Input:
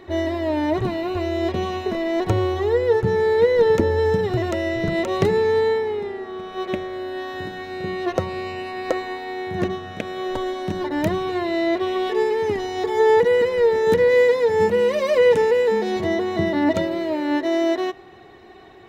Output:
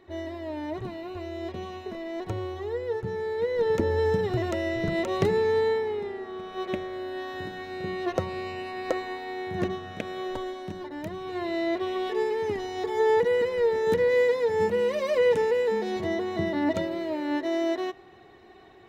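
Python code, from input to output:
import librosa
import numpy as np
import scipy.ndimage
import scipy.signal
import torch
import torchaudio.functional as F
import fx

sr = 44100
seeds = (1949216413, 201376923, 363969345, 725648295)

y = fx.gain(x, sr, db=fx.line((3.37, -12.0), (3.94, -5.0), (10.15, -5.0), (11.09, -14.5), (11.44, -6.5)))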